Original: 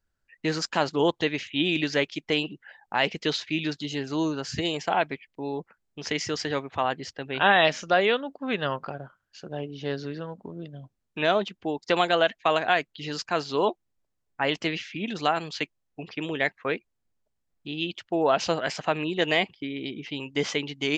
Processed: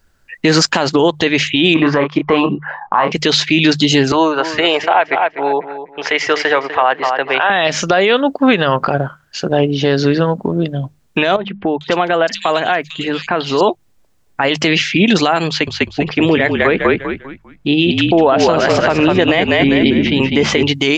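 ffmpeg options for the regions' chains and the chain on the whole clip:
-filter_complex "[0:a]asettb=1/sr,asplit=3[s0][s1][s2];[s0]atrim=end=1.744[s3];[s1]atrim=start=1.74:end=3.12,asetpts=PTS-STARTPTS,afade=t=in:d=0.004:c=qsin,afade=t=out:st=1.376:d=0.004:c=qsin,lowpass=f=1100:t=q:w=9,aemphasis=mode=production:type=75fm,asplit=2[s4][s5];[s5]adelay=28,volume=0.422[s6];[s4][s6]amix=inputs=2:normalize=0,atrim=end_sample=60858[s7];[s2]atrim=start=3.116[s8];[s3][s7]acrossfade=d=0.004:c1=hsin:c2=qsin[s9];[s9][s8]acrossfade=d=0.004:c1=qsin:c2=hsin,asettb=1/sr,asplit=3[s10][s11][s12];[s10]atrim=end=4.124[s13];[s11]atrim=start=4.12:end=7.5,asetpts=PTS-STARTPTS,afade=t=in:d=0.004:c=qsin,afade=t=out:st=3.376:d=0.004:c=qsin,acrossover=split=460 2800:gain=0.0794 1 0.112[s14][s15][s16];[s14][s15][s16]amix=inputs=3:normalize=0,asplit=2[s17][s18];[s18]adelay=248,lowpass=f=3200:p=1,volume=0.266,asplit=2[s19][s20];[s20]adelay=248,lowpass=f=3200:p=1,volume=0.29,asplit=2[s21][s22];[s22]adelay=248,lowpass=f=3200:p=1,volume=0.29[s23];[s17][s19][s21][s23]amix=inputs=4:normalize=0,atrim=end_sample=149058[s24];[s12]atrim=start=7.496[s25];[s13][s24]acrossfade=d=0.004:c1=hsin:c2=qsin[s26];[s26][s25]acrossfade=d=0.004:c1=qsin:c2=hsin,asettb=1/sr,asplit=3[s27][s28][s29];[s27]atrim=end=11.364[s30];[s28]atrim=start=11.36:end=13.61,asetpts=PTS-STARTPTS,afade=t=in:d=0.004:c=qsin,afade=t=out:st=2.246:d=0.004:c=qsin,bandreject=f=50:t=h:w=6,bandreject=f=100:t=h:w=6,bandreject=f=150:t=h:w=6,bandreject=f=200:t=h:w=6,acompressor=threshold=0.0126:ratio=2.5:attack=3.2:release=140:knee=1:detection=peak,acrossover=split=2900[s31][s32];[s32]adelay=450[s33];[s31][s33]amix=inputs=2:normalize=0,atrim=end_sample=99225[s34];[s29]atrim=start=13.606[s35];[s30][s34]acrossfade=d=0.004:c1=hsin:c2=qsin[s36];[s36][s35]acrossfade=d=0.004:c1=qsin:c2=hsin,asettb=1/sr,asplit=3[s37][s38][s39];[s37]atrim=end=15.474[s40];[s38]atrim=start=15.47:end=20.63,asetpts=PTS-STARTPTS,afade=t=in:d=0.004:c=qsin,afade=t=out:st=5.156:d=0.004:c=qsin,highshelf=f=3700:g=-11,asplit=5[s41][s42][s43][s44][s45];[s42]adelay=199,afreqshift=-45,volume=0.562[s46];[s43]adelay=398,afreqshift=-90,volume=0.174[s47];[s44]adelay=597,afreqshift=-135,volume=0.0543[s48];[s45]adelay=796,afreqshift=-180,volume=0.0168[s49];[s41][s46][s47][s48][s49]amix=inputs=5:normalize=0,atrim=end_sample=227556[s50];[s39]atrim=start=20.626[s51];[s40][s50]acrossfade=d=0.004:c1=hsin:c2=qsin[s52];[s52][s51]acrossfade=d=0.004:c1=qsin:c2=hsin,bandreject=f=50:t=h:w=6,bandreject=f=100:t=h:w=6,bandreject=f=150:t=h:w=6,acompressor=threshold=0.0501:ratio=4,alimiter=level_in=14.1:limit=0.891:release=50:level=0:latency=1,volume=0.891"

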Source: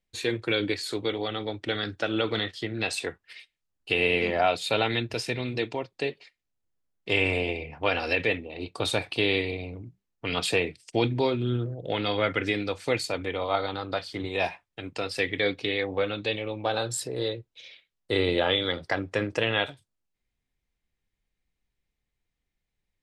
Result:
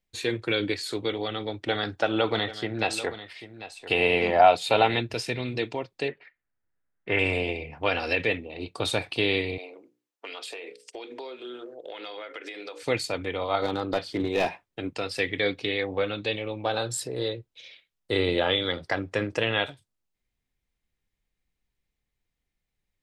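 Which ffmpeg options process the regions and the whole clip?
-filter_complex "[0:a]asettb=1/sr,asplit=3[s0][s1][s2];[s0]atrim=end=1.664[s3];[s1]atrim=start=1.66:end=5.01,asetpts=PTS-STARTPTS,afade=t=in:d=0.004:c=qsin,afade=t=out:st=3.346:d=0.004:c=qsin,equalizer=f=800:w=1.5:g=9,aecho=1:1:792:0.2,atrim=end_sample=147735[s4];[s2]atrim=start=5.006[s5];[s3][s4]acrossfade=d=0.004:c1=hsin:c2=qsin[s6];[s6][s5]acrossfade=d=0.004:c1=qsin:c2=hsin,asettb=1/sr,asplit=3[s7][s8][s9];[s7]atrim=end=6.084[s10];[s8]atrim=start=6.08:end=7.19,asetpts=PTS-STARTPTS,afade=t=in:d=0.004:c=qsin,afade=t=out:st=1.106:d=0.004:c=qsin,lowpass=f=1700:t=q:w=2.7,bandreject=f=1100:w=19[s11];[s9]atrim=start=7.186[s12];[s10][s11]acrossfade=d=0.004:c1=hsin:c2=qsin[s13];[s13][s12]acrossfade=d=0.004:c1=qsin:c2=hsin,asettb=1/sr,asplit=3[s14][s15][s16];[s14]atrim=end=9.584[s17];[s15]atrim=start=9.58:end=12.83,asetpts=PTS-STARTPTS,afade=t=in:d=0.004:c=qsin,afade=t=out:st=3.246:d=0.004:c=qsin,highpass=f=360:w=0.5412,highpass=f=360:w=1.3066,bandreject=f=60:t=h:w=6,bandreject=f=120:t=h:w=6,bandreject=f=180:t=h:w=6,bandreject=f=240:t=h:w=6,bandreject=f=300:t=h:w=6,bandreject=f=360:t=h:w=6,bandreject=f=420:t=h:w=6,bandreject=f=480:t=h:w=6,bandreject=f=540:t=h:w=6,acompressor=threshold=0.02:ratio=16:attack=3.2:release=140:knee=1:detection=peak[s18];[s16]atrim=start=12.826[s19];[s17][s18]acrossfade=d=0.004:c1=hsin:c2=qsin[s20];[s20][s19]acrossfade=d=0.004:c1=qsin:c2=hsin,asettb=1/sr,asplit=3[s21][s22][s23];[s21]atrim=end=13.624[s24];[s22]atrim=start=13.62:end=14.91,asetpts=PTS-STARTPTS,afade=t=in:d=0.004:c=qsin,afade=t=out:st=1.286:d=0.004:c=qsin,aeval=exprs='clip(val(0),-1,0.0531)':c=same,equalizer=f=330:w=0.6:g=7[s25];[s23]atrim=start=14.906[s26];[s24][s25]acrossfade=d=0.004:c1=hsin:c2=qsin[s27];[s27][s26]acrossfade=d=0.004:c1=qsin:c2=hsin"

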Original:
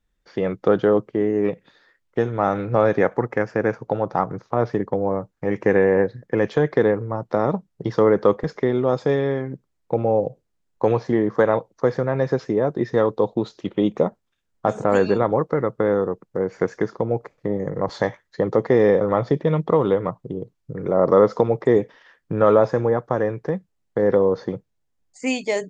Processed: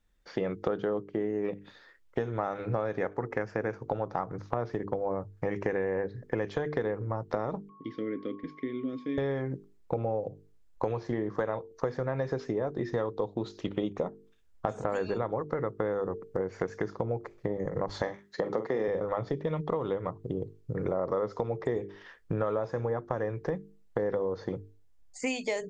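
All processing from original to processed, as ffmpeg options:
-filter_complex "[0:a]asettb=1/sr,asplit=3[s0][s1][s2];[s0]atrim=end=7.694[s3];[s1]atrim=start=7.69:end=9.18,asetpts=PTS-STARTPTS,afade=t=in:d=0.004:c=qsin,afade=t=out:st=1.486:d=0.004:c=qsin,aeval=exprs='val(0)+0.0891*sin(2*PI*1100*n/s)':c=same,asplit=3[s4][s5][s6];[s4]bandpass=f=270:t=q:w=8,volume=1[s7];[s5]bandpass=f=2290:t=q:w=8,volume=0.501[s8];[s6]bandpass=f=3010:t=q:w=8,volume=0.355[s9];[s7][s8][s9]amix=inputs=3:normalize=0,bandreject=f=1200:w=20[s10];[s2]atrim=start=9.176[s11];[s3][s10]acrossfade=d=0.004:c1=hsin:c2=qsin[s12];[s12][s11]acrossfade=d=0.004:c1=qsin:c2=hsin,asettb=1/sr,asplit=3[s13][s14][s15];[s13]atrim=end=18.024[s16];[s14]atrim=start=18.02:end=18.88,asetpts=PTS-STARTPTS,afade=t=in:d=0.004:c=qsin,afade=t=out:st=0.856:d=0.004:c=qsin,highpass=f=150:w=0.5412,highpass=f=150:w=1.3066,asplit=2[s17][s18];[s18]adelay=45,volume=0.335[s19];[s17][s19]amix=inputs=2:normalize=0,atrim=end_sample=37926[s20];[s15]atrim=start=18.876[s21];[s16][s20]acrossfade=d=0.004:c1=hsin:c2=qsin[s22];[s22][s21]acrossfade=d=0.004:c1=qsin:c2=hsin,bandreject=f=50:t=h:w=6,bandreject=f=100:t=h:w=6,bandreject=f=150:t=h:w=6,bandreject=f=200:t=h:w=6,bandreject=f=250:t=h:w=6,bandreject=f=300:t=h:w=6,bandreject=f=350:t=h:w=6,bandreject=f=400:t=h:w=6,bandreject=f=450:t=h:w=6,asubboost=boost=4:cutoff=78,acompressor=threshold=0.0355:ratio=6,volume=1.12"

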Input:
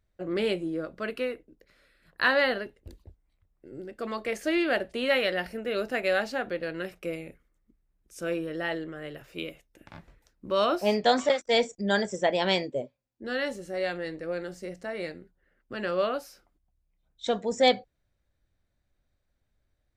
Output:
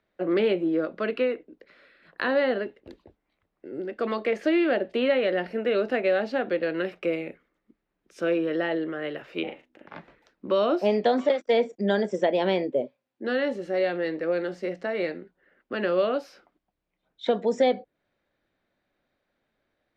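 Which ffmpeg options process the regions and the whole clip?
-filter_complex "[0:a]asettb=1/sr,asplit=3[s0][s1][s2];[s0]atrim=end=9.434[s3];[s1]atrim=start=9.43:end=9.96,asetpts=PTS-STARTPTS,afade=t=in:d=0.004:c=qsin,afade=t=out:st=0.526:d=0.004:c=qsin,highshelf=f=4400:g=-7,tremolo=f=280:d=0.919,asplit=2[s4][s5];[s5]adelay=40,volume=0.596[s6];[s4][s6]amix=inputs=2:normalize=0,atrim=end_sample=23373[s7];[s2]atrim=start=9.956[s8];[s3][s7]acrossfade=d=0.004:c1=hsin:c2=qsin[s9];[s9][s8]acrossfade=d=0.004:c1=qsin:c2=hsin,acrossover=split=190 4100:gain=0.0708 1 0.0708[s10][s11][s12];[s10][s11][s12]amix=inputs=3:normalize=0,acrossover=split=570|2700[s13][s14][s15];[s13]acompressor=threshold=0.0355:ratio=4[s16];[s14]acompressor=threshold=0.00891:ratio=4[s17];[s15]acompressor=threshold=0.00316:ratio=4[s18];[s16][s17][s18]amix=inputs=3:normalize=0,volume=2.66"

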